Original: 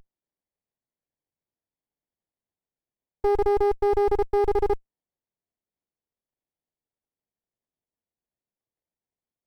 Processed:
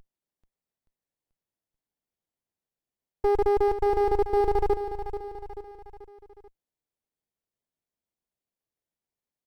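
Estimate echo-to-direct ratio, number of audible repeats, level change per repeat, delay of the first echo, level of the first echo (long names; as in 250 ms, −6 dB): −9.0 dB, 4, −6.0 dB, 436 ms, −10.0 dB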